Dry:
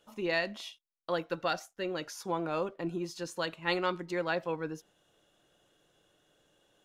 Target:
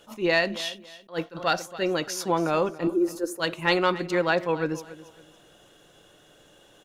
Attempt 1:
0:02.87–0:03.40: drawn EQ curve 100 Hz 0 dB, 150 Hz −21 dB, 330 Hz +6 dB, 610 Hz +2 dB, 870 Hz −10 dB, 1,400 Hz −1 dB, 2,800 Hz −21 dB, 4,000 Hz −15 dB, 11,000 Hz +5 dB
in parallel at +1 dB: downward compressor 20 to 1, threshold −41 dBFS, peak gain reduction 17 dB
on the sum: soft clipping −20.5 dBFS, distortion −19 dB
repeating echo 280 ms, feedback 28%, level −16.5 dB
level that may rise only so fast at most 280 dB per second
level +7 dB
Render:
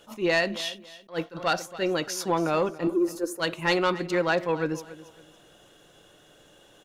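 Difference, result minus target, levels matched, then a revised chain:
soft clipping: distortion +13 dB
0:02.87–0:03.40: drawn EQ curve 100 Hz 0 dB, 150 Hz −21 dB, 330 Hz +6 dB, 610 Hz +2 dB, 870 Hz −10 dB, 1,400 Hz −1 dB, 2,800 Hz −21 dB, 4,000 Hz −15 dB, 11,000 Hz +5 dB
in parallel at +1 dB: downward compressor 20 to 1, threshold −41 dBFS, peak gain reduction 17 dB
on the sum: soft clipping −12 dBFS, distortion −33 dB
repeating echo 280 ms, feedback 28%, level −16.5 dB
level that may rise only so fast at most 280 dB per second
level +7 dB

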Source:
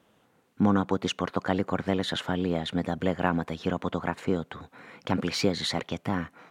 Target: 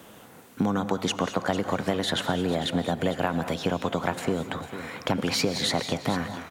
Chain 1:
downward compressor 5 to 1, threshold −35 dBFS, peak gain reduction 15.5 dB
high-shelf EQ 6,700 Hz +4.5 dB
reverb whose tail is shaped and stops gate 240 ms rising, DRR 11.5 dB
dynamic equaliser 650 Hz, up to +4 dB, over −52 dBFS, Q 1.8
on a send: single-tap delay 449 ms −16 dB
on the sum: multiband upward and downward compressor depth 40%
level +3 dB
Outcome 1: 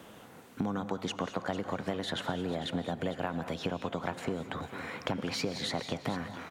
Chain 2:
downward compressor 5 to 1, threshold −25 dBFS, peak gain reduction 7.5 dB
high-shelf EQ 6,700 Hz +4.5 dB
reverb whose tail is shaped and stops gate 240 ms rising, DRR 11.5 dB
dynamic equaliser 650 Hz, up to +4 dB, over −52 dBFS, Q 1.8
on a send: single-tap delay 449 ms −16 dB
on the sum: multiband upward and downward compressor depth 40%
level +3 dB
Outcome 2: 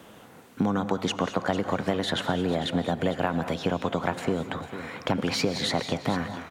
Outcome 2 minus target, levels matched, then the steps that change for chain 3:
8,000 Hz band −4.0 dB
change: high-shelf EQ 6,700 Hz +13 dB

